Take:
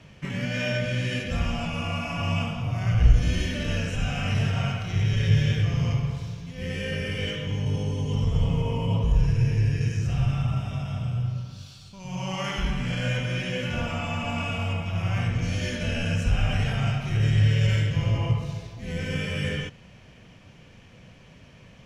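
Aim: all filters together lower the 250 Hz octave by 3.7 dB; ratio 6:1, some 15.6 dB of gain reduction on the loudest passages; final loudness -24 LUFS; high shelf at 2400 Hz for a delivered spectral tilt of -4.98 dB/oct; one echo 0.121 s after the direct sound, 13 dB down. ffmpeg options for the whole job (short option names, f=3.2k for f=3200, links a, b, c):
-af "equalizer=f=250:t=o:g=-7,highshelf=f=2.4k:g=4,acompressor=threshold=-29dB:ratio=6,aecho=1:1:121:0.224,volume=9dB"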